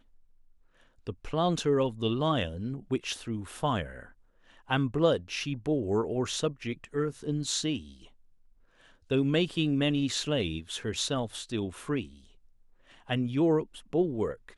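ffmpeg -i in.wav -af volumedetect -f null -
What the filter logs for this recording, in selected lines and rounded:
mean_volume: -31.0 dB
max_volume: -12.4 dB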